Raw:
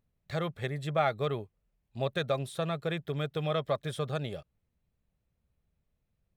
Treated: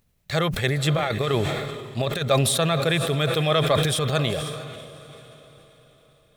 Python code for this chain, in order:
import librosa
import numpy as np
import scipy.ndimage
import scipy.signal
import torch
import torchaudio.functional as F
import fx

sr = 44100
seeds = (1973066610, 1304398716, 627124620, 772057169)

y = fx.high_shelf(x, sr, hz=2100.0, db=9.0)
y = fx.over_compress(y, sr, threshold_db=-31.0, ratio=-0.5, at=(0.77, 2.31))
y = fx.transient(y, sr, attack_db=-5, sustain_db=6, at=(3.7, 4.12))
y = fx.echo_diffused(y, sr, ms=496, feedback_pct=44, wet_db=-14)
y = fx.sustainer(y, sr, db_per_s=32.0)
y = y * 10.0 ** (8.0 / 20.0)